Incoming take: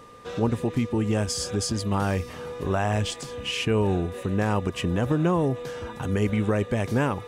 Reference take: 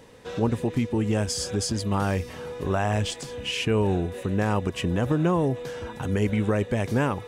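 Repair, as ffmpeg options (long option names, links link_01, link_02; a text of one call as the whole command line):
ffmpeg -i in.wav -af "bandreject=frequency=1200:width=30" out.wav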